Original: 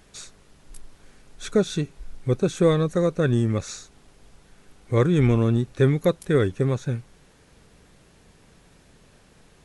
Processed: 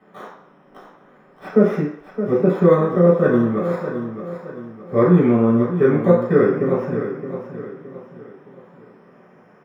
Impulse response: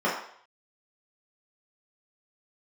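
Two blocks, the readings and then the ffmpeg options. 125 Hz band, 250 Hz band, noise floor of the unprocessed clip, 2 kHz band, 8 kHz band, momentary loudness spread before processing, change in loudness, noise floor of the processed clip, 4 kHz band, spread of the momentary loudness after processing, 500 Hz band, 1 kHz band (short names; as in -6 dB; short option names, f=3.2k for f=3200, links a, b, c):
+0.5 dB, +7.0 dB, -56 dBFS, +3.5 dB, under -20 dB, 14 LU, +5.0 dB, -52 dBFS, under -10 dB, 18 LU, +7.5 dB, +8.5 dB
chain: -filter_complex "[0:a]acrossover=split=190|440|2800[a][b][c][d];[d]acrusher=samples=15:mix=1:aa=0.000001:lfo=1:lforange=9:lforate=0.4[e];[a][b][c][e]amix=inputs=4:normalize=0,aecho=1:1:618|1236|1854|2472:0.316|0.126|0.0506|0.0202[f];[1:a]atrim=start_sample=2205[g];[f][g]afir=irnorm=-1:irlink=0,volume=-9.5dB"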